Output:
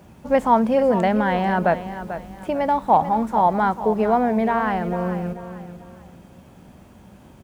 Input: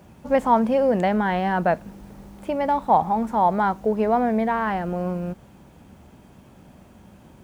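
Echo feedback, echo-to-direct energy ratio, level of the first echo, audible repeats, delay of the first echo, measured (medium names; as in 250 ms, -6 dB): 33%, -11.0 dB, -11.5 dB, 3, 441 ms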